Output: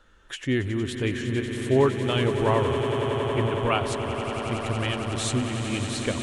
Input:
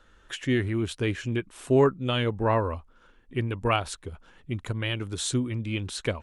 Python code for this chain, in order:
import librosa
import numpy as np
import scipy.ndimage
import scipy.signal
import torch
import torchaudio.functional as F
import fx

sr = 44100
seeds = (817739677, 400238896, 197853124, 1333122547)

y = fx.echo_swell(x, sr, ms=92, loudest=8, wet_db=-12.0)